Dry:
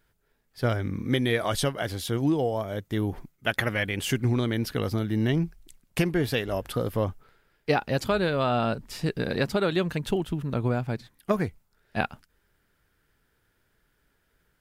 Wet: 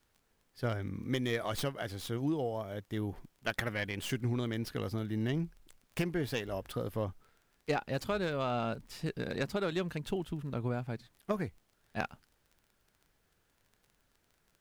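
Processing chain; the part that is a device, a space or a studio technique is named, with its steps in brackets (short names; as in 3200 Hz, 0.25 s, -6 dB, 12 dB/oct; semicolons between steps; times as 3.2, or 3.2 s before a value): record under a worn stylus (tracing distortion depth 0.078 ms; crackle 20/s -40 dBFS; pink noise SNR 39 dB); gain -8.5 dB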